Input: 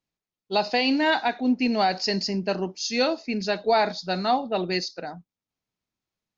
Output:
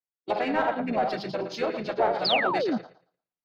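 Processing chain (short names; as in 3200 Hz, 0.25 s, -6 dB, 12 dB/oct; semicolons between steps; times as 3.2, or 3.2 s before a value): regenerating reverse delay 0.106 s, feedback 52%, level -6.5 dB; treble ducked by the level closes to 2600 Hz, closed at -18.5 dBFS; notches 50/100/150/200/250 Hz; in parallel at -8 dB: overloaded stage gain 28 dB; on the sum: harmoniser -7 st -9 dB, -3 st -3 dB; overdrive pedal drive 15 dB, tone 1100 Hz, clips at -4.5 dBFS; painted sound fall, 4.16–5.14, 200–5200 Hz -17 dBFS; time stretch by phase-locked vocoder 0.54×; three-band expander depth 40%; gain -8 dB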